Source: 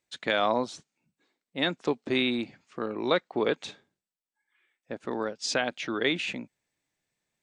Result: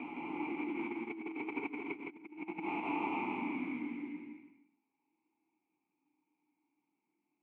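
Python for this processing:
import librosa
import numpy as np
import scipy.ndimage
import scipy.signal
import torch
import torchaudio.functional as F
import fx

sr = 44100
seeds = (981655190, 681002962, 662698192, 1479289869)

p1 = fx.sample_hold(x, sr, seeds[0], rate_hz=1900.0, jitter_pct=20)
p2 = 10.0 ** (-24.0 / 20.0) * np.tanh(p1 / 10.0 ** (-24.0 / 20.0))
p3 = fx.paulstretch(p2, sr, seeds[1], factor=5.6, window_s=0.25, from_s=5.74)
p4 = fx.vowel_filter(p3, sr, vowel='u')
p5 = fx.over_compress(p4, sr, threshold_db=-45.0, ratio=-0.5)
p6 = scipy.signal.sosfilt(scipy.signal.butter(2, 130.0, 'highpass', fs=sr, output='sos'), p5)
p7 = fx.high_shelf_res(p6, sr, hz=3400.0, db=-12.0, q=3.0)
p8 = p7 + fx.echo_single(p7, sr, ms=163, db=-3.5, dry=0)
y = p8 * 10.0 ** (4.0 / 20.0)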